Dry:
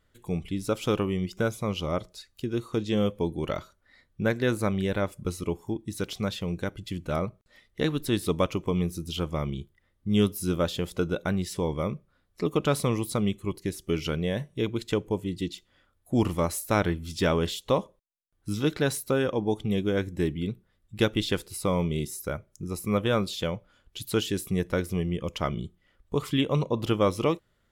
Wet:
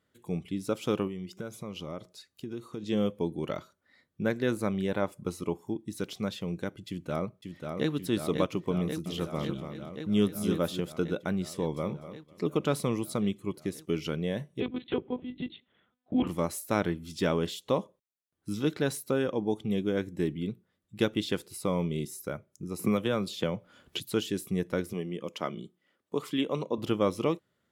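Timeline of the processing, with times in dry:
0:01.07–0:02.83: downward compressor 4 to 1, threshold −31 dBFS
0:04.88–0:05.58: parametric band 880 Hz +5.5 dB 1 octave
0:06.88–0:07.91: delay throw 540 ms, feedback 80%, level −5 dB
0:08.77–0:10.80: single-tap delay 287 ms −7.5 dB
0:11.51–0:11.91: delay throw 250 ms, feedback 20%, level −12.5 dB
0:14.60–0:16.27: one-pitch LPC vocoder at 8 kHz 250 Hz
0:22.79–0:24.00: multiband upward and downward compressor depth 100%
0:24.93–0:26.78: high-pass filter 220 Hz
whole clip: high-pass filter 180 Hz 12 dB per octave; low-shelf EQ 290 Hz +7.5 dB; level −5 dB

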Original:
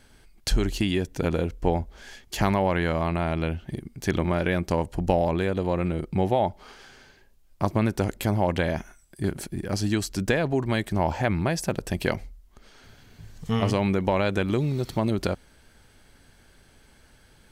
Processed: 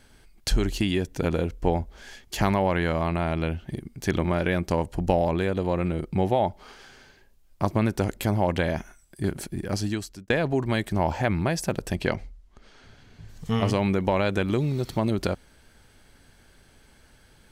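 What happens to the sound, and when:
0:09.73–0:10.30: fade out linear
0:11.95–0:13.29: high-frequency loss of the air 51 metres

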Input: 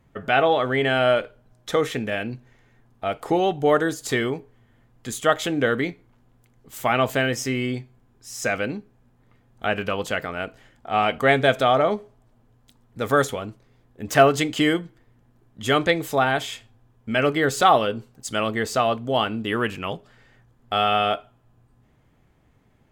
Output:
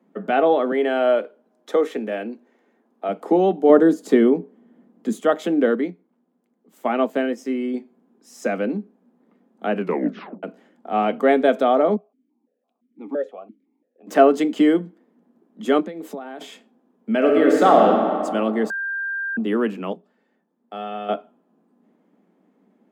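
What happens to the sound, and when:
0:00.71–0:03.08: high-pass filter 310 Hz
0:03.69–0:05.19: low-shelf EQ 430 Hz +8.5 dB
0:05.75–0:07.74: expander for the loud parts, over −34 dBFS
0:09.80: tape stop 0.63 s
0:11.96–0:14.07: formant filter that steps through the vowels 5.9 Hz
0:15.80–0:16.41: downward compressor 10 to 1, threshold −31 dBFS
0:17.16–0:17.84: thrown reverb, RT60 2.4 s, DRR −0.5 dB
0:18.70–0:19.37: beep over 1,590 Hz −18 dBFS
0:19.93–0:21.09: tuned comb filter 890 Hz, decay 0.18 s, mix 70%
whole clip: Butterworth high-pass 180 Hz 96 dB per octave; tilt shelving filter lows +9 dB; level −1.5 dB

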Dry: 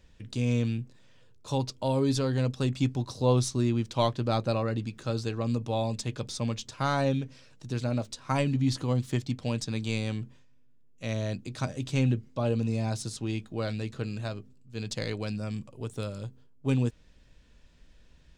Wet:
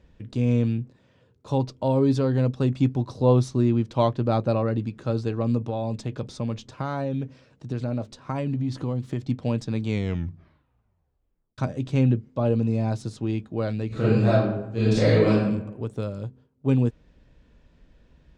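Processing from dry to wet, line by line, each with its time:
0:05.68–0:09.24: downward compressor, threshold −28 dBFS
0:09.85: tape stop 1.73 s
0:13.87–0:15.36: thrown reverb, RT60 0.86 s, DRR −11 dB
whole clip: high-pass filter 520 Hz 6 dB per octave; spectral tilt −4.5 dB per octave; level +4 dB

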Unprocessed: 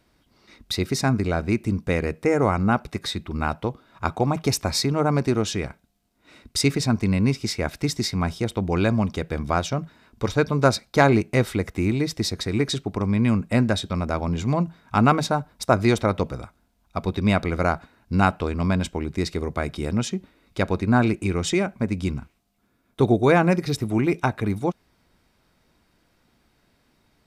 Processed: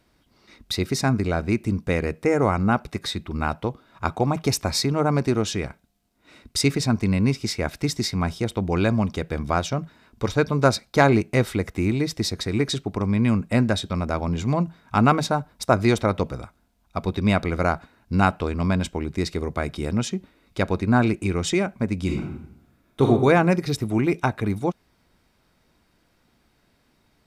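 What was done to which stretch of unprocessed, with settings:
0:22.04–0:23.08: thrown reverb, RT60 0.82 s, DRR −0.5 dB

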